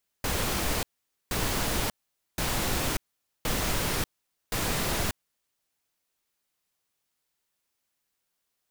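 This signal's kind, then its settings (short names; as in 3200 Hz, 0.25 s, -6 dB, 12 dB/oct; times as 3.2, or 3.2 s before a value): noise bursts pink, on 0.59 s, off 0.48 s, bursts 5, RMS -28 dBFS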